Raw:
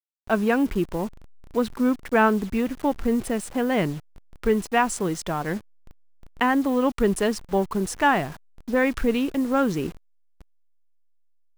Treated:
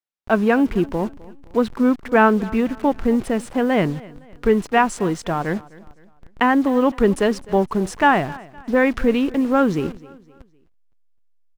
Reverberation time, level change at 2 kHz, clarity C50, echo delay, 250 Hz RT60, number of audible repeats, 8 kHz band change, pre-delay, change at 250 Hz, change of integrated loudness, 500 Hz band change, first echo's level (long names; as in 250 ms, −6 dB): no reverb audible, +4.0 dB, no reverb audible, 257 ms, no reverb audible, 2, −3.0 dB, no reverb audible, +4.5 dB, +4.5 dB, +5.0 dB, −21.0 dB